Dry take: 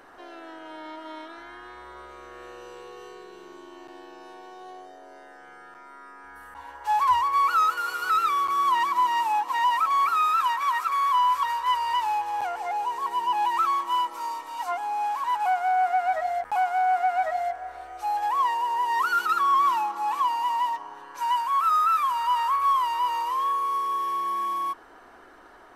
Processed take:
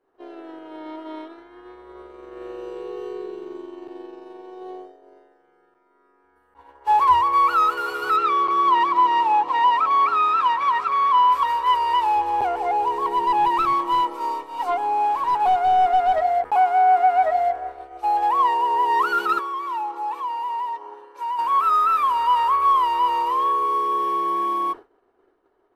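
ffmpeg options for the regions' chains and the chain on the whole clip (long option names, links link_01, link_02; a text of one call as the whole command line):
ffmpeg -i in.wav -filter_complex "[0:a]asettb=1/sr,asplit=3[link_01][link_02][link_03];[link_01]atrim=end=8.164[link_04];[link_02]atrim=start=8.16:end=11.32,asetpts=PTS-STARTPTS,afade=type=in:duration=0.004:curve=qsin,afade=type=out:start_time=3.156:duration=0.004:curve=qsin,aeval=exprs='val(0)+0.00178*(sin(2*PI*50*n/s)+sin(2*PI*2*50*n/s)/2+sin(2*PI*3*50*n/s)/3+sin(2*PI*4*50*n/s)/4+sin(2*PI*5*50*n/s)/5)':channel_layout=same,highpass=200,lowpass=5500[link_05];[link_03]atrim=start=11.316[link_06];[link_04][link_05]acrossfade=duration=0.004:curve1=hsin:curve2=qsin[link_07];[link_07][link_06]acrossfade=duration=0.004:curve1=qsin:curve2=hsin,asettb=1/sr,asplit=3[link_08][link_09][link_10];[link_08]atrim=end=12.164[link_11];[link_09]atrim=start=12.16:end=16.23,asetpts=PTS-STARTPTS,afade=type=in:duration=0.004:curve=qsin,afade=type=out:start_time=4.066:duration=0.004:curve=qsin,lowshelf=frequency=140:gain=9,aeval=exprs='clip(val(0),-1,0.0794)':channel_layout=same[link_12];[link_10]atrim=start=16.226[link_13];[link_11][link_12]acrossfade=duration=0.004:curve1=hsin:curve2=qsin[link_14];[link_14][link_13]acrossfade=duration=0.004:curve1=qsin:curve2=hsin,asettb=1/sr,asplit=3[link_15][link_16][link_17];[link_15]atrim=end=19.394[link_18];[link_16]atrim=start=19.39:end=21.39,asetpts=PTS-STARTPTS,afade=type=in:duration=0.004:curve=qsin,afade=type=out:start_time=1.996:duration=0.004:curve=qsin,highpass=320,aecho=1:1:2.2:0.42,atrim=end_sample=88200,acompressor=threshold=-34dB:ratio=2.5:attack=3.2:release=140:knee=1:detection=peak[link_19];[link_17]atrim=start=21.386[link_20];[link_18][link_19]acrossfade=duration=0.004:curve1=hsin:curve2=qsin[link_21];[link_21][link_20]acrossfade=duration=0.004:curve1=qsin:curve2=hsin,equalizer=frequency=100:width_type=o:width=0.67:gain=4,equalizer=frequency=400:width_type=o:width=0.67:gain=12,equalizer=frequency=1600:width_type=o:width=0.67:gain=-5,equalizer=frequency=6300:width_type=o:width=0.67:gain=-5,agate=range=-33dB:threshold=-32dB:ratio=3:detection=peak,aemphasis=mode=reproduction:type=cd,volume=5.5dB" out.wav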